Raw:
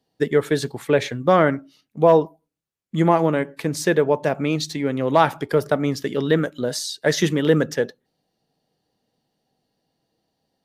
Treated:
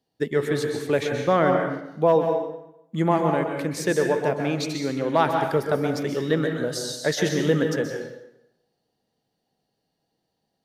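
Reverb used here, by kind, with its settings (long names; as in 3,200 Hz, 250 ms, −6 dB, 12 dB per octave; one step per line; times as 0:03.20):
dense smooth reverb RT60 0.85 s, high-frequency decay 0.8×, pre-delay 115 ms, DRR 3 dB
level −4.5 dB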